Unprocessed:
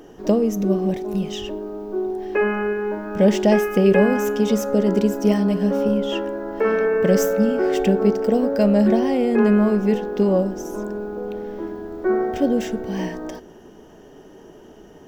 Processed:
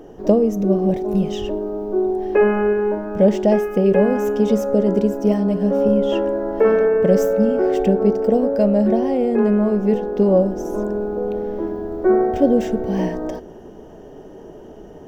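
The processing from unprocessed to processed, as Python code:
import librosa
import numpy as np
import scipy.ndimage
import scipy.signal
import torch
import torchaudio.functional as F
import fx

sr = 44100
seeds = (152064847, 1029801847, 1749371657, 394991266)

y = fx.low_shelf(x, sr, hz=220.0, db=11.5)
y = fx.rider(y, sr, range_db=3, speed_s=0.5)
y = fx.peak_eq(y, sr, hz=600.0, db=9.0, octaves=1.6)
y = y * librosa.db_to_amplitude(-6.0)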